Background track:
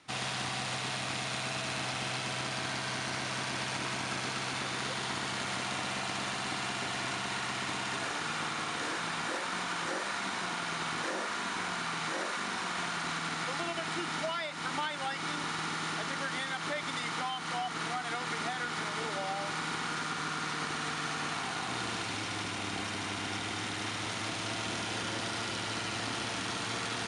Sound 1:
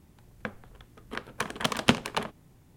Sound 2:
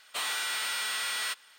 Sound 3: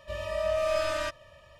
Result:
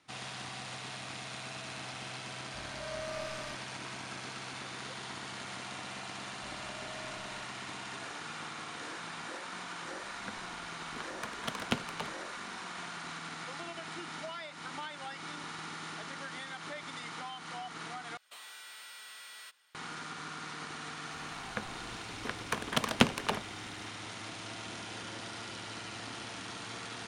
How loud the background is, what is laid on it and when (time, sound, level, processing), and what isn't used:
background track −7.5 dB
0:02.45: mix in 3 −14 dB + multiband upward and downward expander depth 40%
0:06.34: mix in 3 −16.5 dB + downward compressor 3 to 1, threshold −32 dBFS
0:09.83: mix in 1 −10.5 dB
0:18.17: overwrite with 2 −12 dB + downward compressor 2.5 to 1, threshold −36 dBFS
0:21.12: mix in 1 −2.5 dB

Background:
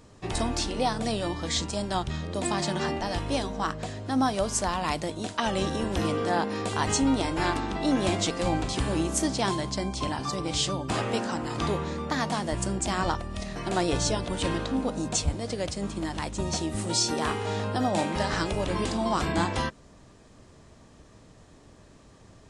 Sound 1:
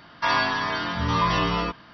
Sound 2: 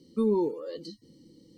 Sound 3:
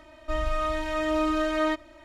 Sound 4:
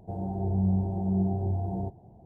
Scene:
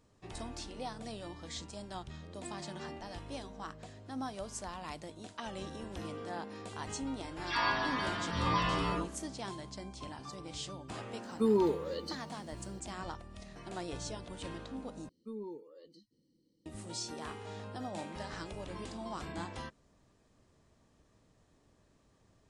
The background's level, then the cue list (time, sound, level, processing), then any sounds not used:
background −15 dB
0:07.23: mix in 1 −9 dB + all-pass dispersion lows, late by 133 ms, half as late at 1,600 Hz
0:11.23: mix in 2 + spectral tilt +1.5 dB per octave
0:15.09: overwrite with 2 −18 dB
not used: 3, 4

